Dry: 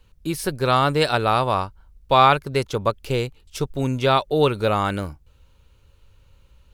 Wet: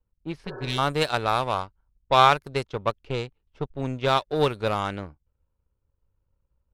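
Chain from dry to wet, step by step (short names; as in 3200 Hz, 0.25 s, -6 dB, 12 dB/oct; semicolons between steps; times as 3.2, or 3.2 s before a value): power-law curve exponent 1.4; low-pass opened by the level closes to 1100 Hz, open at -19.5 dBFS; spectral repair 0.49–0.76, 300–1800 Hz before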